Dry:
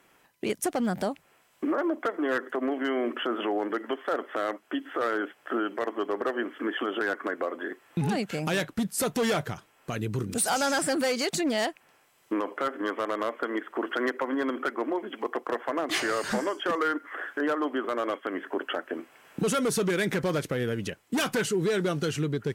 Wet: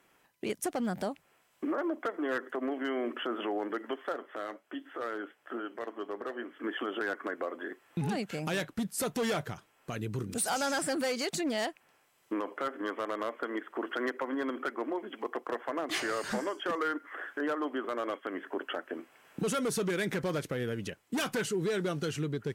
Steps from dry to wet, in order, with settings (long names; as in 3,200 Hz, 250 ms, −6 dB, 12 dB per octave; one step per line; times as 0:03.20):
0:04.12–0:06.64: flanger 1.3 Hz, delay 7.2 ms, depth 3.3 ms, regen −70%
level −5 dB